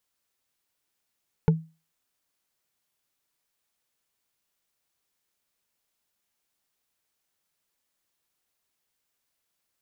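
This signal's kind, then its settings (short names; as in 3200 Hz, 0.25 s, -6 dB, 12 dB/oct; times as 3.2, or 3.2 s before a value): wood hit, lowest mode 161 Hz, decay 0.30 s, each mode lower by 6 dB, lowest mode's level -12.5 dB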